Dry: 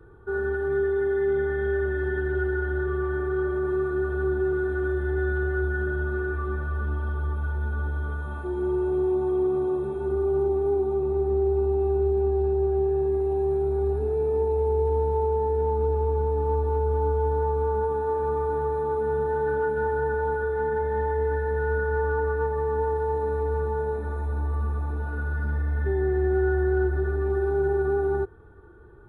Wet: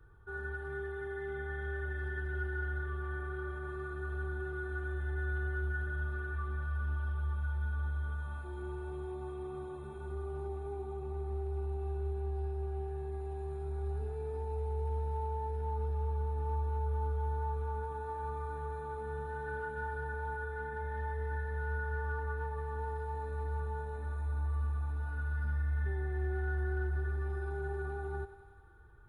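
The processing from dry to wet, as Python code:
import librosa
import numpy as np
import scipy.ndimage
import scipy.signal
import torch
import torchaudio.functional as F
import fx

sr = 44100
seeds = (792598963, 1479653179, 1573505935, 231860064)

y = fx.peak_eq(x, sr, hz=370.0, db=-14.0, octaves=2.3)
y = fx.echo_thinned(y, sr, ms=94, feedback_pct=80, hz=420.0, wet_db=-12.0)
y = y * librosa.db_to_amplitude(-4.5)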